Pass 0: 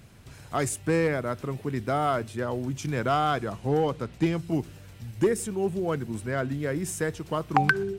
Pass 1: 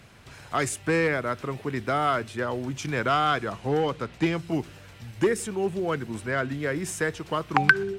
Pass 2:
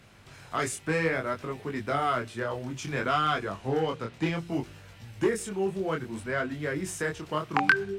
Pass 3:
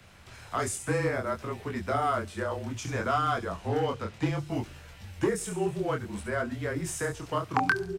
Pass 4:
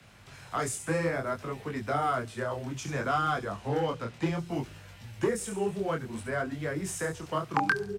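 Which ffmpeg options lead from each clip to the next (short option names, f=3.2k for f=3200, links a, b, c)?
-filter_complex "[0:a]lowpass=f=3.3k:p=1,lowshelf=f=470:g=-11,acrossover=split=530|1000[a][b][c];[b]acompressor=threshold=-46dB:ratio=6[d];[a][d][c]amix=inputs=3:normalize=0,volume=8dB"
-af "flanger=delay=19:depth=7.3:speed=0.61"
-filter_complex "[0:a]acrossover=split=340|1500|4700[a][b][c][d];[a]afreqshift=-21[e];[c]acompressor=threshold=-46dB:ratio=6[f];[d]aecho=1:1:70|140|210|280|350:0.447|0.188|0.0788|0.0331|0.0139[g];[e][b][f][g]amix=inputs=4:normalize=0,volume=1.5dB"
-af "afreqshift=21,volume=-1dB"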